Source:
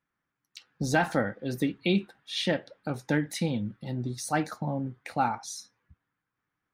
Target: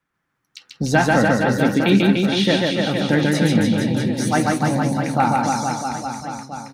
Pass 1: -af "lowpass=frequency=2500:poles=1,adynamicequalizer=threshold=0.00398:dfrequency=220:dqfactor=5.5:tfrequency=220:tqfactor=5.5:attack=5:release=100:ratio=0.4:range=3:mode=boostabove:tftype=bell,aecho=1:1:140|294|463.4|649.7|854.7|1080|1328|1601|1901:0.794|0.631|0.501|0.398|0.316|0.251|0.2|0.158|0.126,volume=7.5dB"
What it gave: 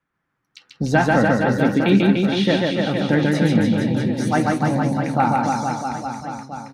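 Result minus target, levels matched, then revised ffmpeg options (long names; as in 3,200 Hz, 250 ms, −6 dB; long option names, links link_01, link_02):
8,000 Hz band −6.5 dB
-af "lowpass=frequency=8800:poles=1,adynamicequalizer=threshold=0.00398:dfrequency=220:dqfactor=5.5:tfrequency=220:tqfactor=5.5:attack=5:release=100:ratio=0.4:range=3:mode=boostabove:tftype=bell,aecho=1:1:140|294|463.4|649.7|854.7|1080|1328|1601|1901:0.794|0.631|0.501|0.398|0.316|0.251|0.2|0.158|0.126,volume=7.5dB"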